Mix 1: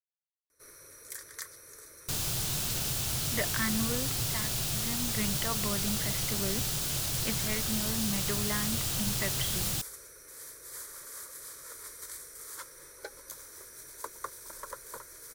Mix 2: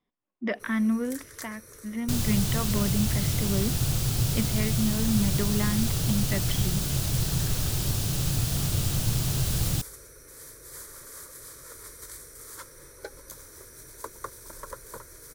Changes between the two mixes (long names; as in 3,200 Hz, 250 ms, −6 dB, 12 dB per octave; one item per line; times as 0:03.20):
speech: entry −2.90 s
master: add low-shelf EQ 360 Hz +12 dB